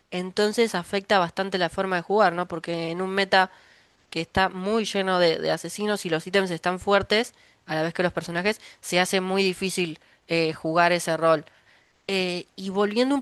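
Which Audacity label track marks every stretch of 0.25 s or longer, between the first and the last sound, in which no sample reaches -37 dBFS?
3.460000	4.120000	silence
7.280000	7.680000	silence
9.960000	10.300000	silence
11.470000	12.090000	silence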